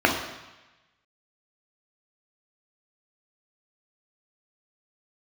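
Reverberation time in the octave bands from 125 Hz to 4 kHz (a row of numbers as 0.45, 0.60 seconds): 1.2, 0.95, 1.0, 1.1, 1.2, 1.1 seconds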